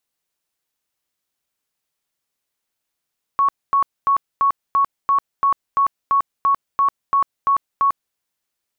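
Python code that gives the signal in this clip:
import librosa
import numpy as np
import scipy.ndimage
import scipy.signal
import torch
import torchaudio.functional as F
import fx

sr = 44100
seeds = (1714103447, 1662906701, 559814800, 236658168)

y = fx.tone_burst(sr, hz=1110.0, cycles=107, every_s=0.34, bursts=14, level_db=-12.5)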